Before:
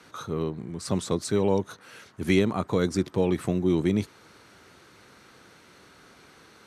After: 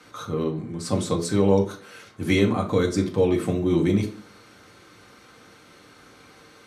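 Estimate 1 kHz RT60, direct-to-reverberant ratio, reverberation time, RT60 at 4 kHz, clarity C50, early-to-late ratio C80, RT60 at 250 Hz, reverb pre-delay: 0.35 s, 0.5 dB, 0.40 s, 0.35 s, 11.5 dB, 17.0 dB, 0.55 s, 4 ms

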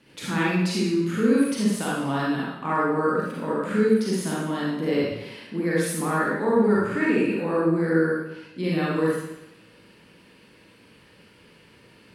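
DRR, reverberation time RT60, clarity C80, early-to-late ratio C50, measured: -6.5 dB, 0.90 s, 2.0 dB, -3.0 dB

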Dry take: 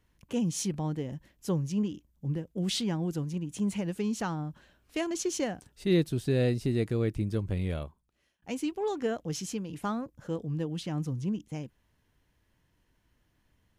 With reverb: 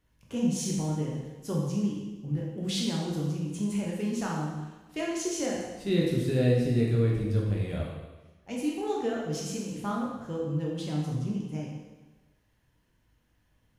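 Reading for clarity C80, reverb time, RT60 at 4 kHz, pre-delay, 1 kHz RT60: 3.5 dB, 1.2 s, 1.1 s, 6 ms, 1.2 s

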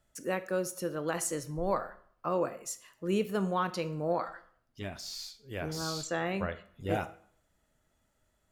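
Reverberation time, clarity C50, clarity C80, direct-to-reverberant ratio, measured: 0.60 s, 15.0 dB, 19.0 dB, 11.5 dB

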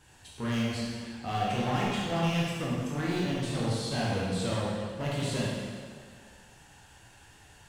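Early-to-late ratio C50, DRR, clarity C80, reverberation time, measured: -2.0 dB, -6.5 dB, 0.0 dB, 1.9 s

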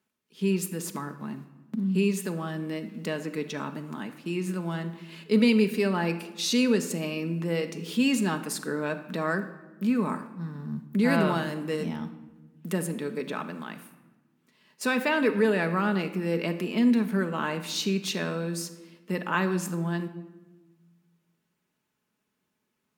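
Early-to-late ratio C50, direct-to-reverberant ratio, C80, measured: 12.0 dB, 6.5 dB, 14.0 dB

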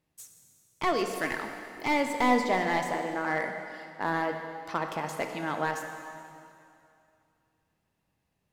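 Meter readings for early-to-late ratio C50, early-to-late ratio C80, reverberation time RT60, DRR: 5.5 dB, 6.5 dB, 2.6 s, 4.5 dB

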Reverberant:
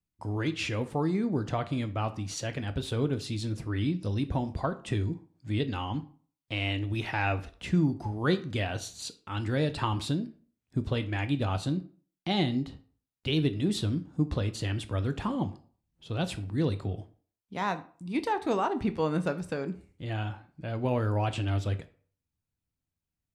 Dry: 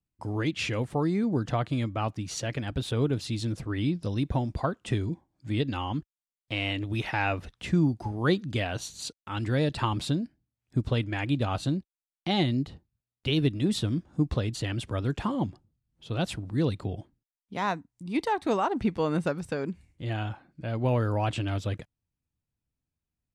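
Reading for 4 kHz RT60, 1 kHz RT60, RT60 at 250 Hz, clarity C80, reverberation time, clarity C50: 0.30 s, 0.45 s, 0.45 s, 20.0 dB, 0.45 s, 16.0 dB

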